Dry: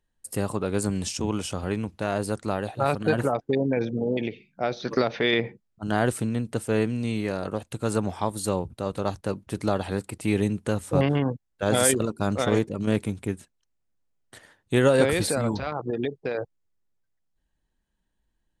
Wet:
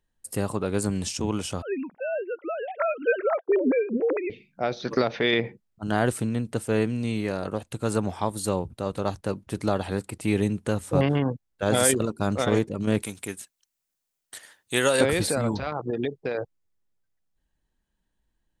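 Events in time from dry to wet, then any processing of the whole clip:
1.62–4.3 sine-wave speech
13.02–15.01 tilt +3.5 dB/oct

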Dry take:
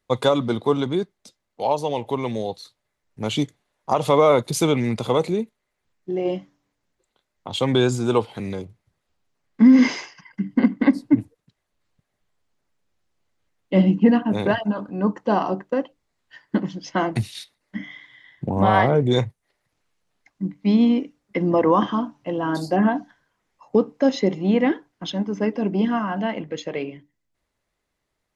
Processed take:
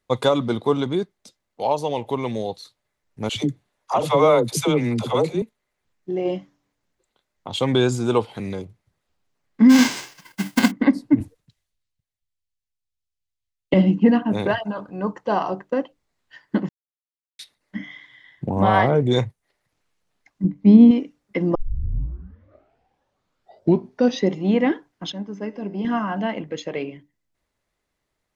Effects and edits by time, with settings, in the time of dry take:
3.29–5.42 dispersion lows, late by 73 ms, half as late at 480 Hz
9.69–10.7 spectral whitening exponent 0.3
11.2–13.74 three-band expander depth 100%
14.47–15.64 bell 250 Hz -8.5 dB
16.69–17.39 mute
20.44–20.91 tilt shelf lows +8 dB, about 830 Hz
21.55 tape start 2.75 s
25.12–25.85 resonator 100 Hz, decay 1.5 s

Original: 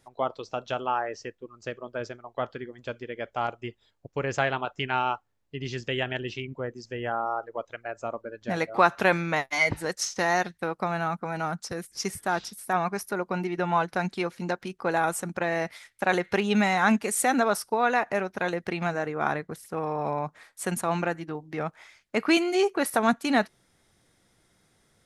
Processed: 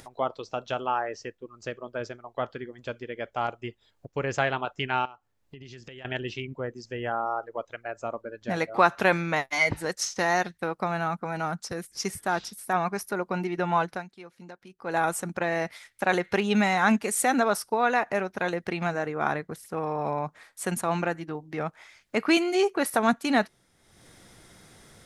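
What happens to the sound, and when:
5.05–6.05 compressor 4:1, threshold -45 dBFS
13.88–14.98 dip -17 dB, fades 0.17 s
whole clip: upward compressor, threshold -40 dBFS

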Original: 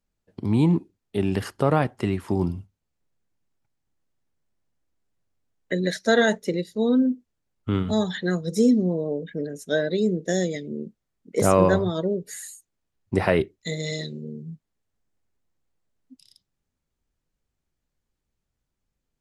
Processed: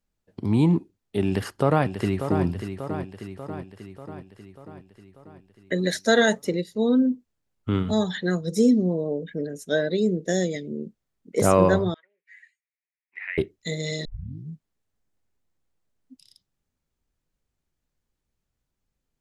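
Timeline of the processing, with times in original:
1.26–2.44 echo throw 0.59 s, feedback 60%, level -8.5 dB
5.79–6.45 high shelf 5400 Hz +7 dB
11.94–13.38 Butterworth band-pass 2100 Hz, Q 3.3
14.05 tape start 0.45 s

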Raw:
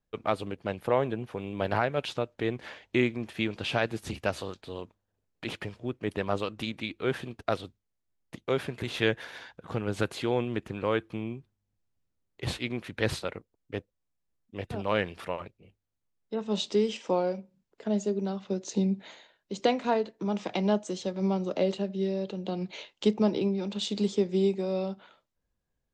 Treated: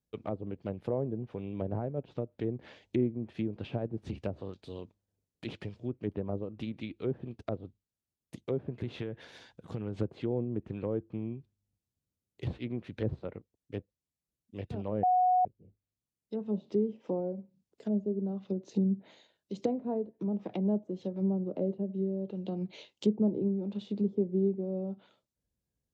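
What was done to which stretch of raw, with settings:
8.87–9.98 compressor, threshold -27 dBFS
15.03–15.45 bleep 733 Hz -9.5 dBFS
whole clip: treble ducked by the level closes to 640 Hz, closed at -26 dBFS; HPF 58 Hz; bell 1400 Hz -12 dB 2.6 oct

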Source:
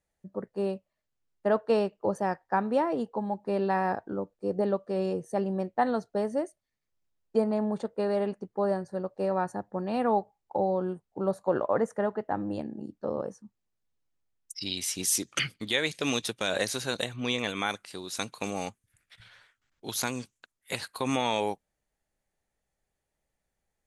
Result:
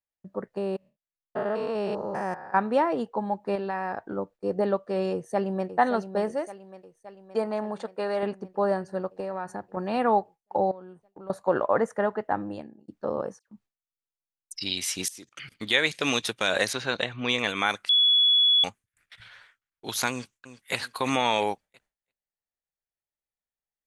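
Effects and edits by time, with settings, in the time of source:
0.57–2.57 stepped spectrum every 0.2 s
3.55–4.16 compressor, threshold -29 dBFS
5.12–5.69 echo throw 0.57 s, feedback 70%, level -10 dB
6.31–8.23 low shelf 350 Hz -9 dB
9.2–9.77 compressor 4:1, threshold -32 dBFS
10.71–11.3 compressor 3:1, threshold -48 dBFS
12.32–12.88 fade out
13.39–14.58 dispersion lows, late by 90 ms, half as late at 2500 Hz
15.08–15.52 level quantiser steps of 23 dB
16.73–17.29 LPF 4100 Hz
17.89–18.64 bleep 3390 Hz -21 dBFS
20.11–20.76 echo throw 0.34 s, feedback 40%, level -13 dB
whole clip: gate with hold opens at -50 dBFS; bell 1700 Hz +6.5 dB 2.8 oct

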